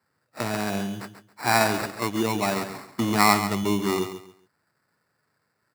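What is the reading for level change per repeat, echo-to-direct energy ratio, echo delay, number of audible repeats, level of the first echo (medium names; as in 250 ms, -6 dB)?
-12.0 dB, -10.0 dB, 137 ms, 3, -10.5 dB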